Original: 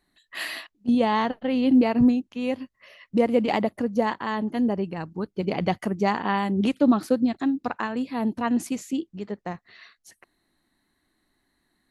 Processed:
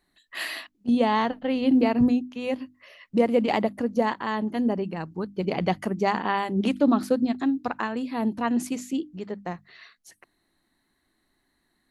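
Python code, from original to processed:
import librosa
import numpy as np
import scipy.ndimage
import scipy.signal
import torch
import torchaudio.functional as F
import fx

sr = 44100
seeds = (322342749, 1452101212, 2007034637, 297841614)

y = fx.hum_notches(x, sr, base_hz=50, count=6)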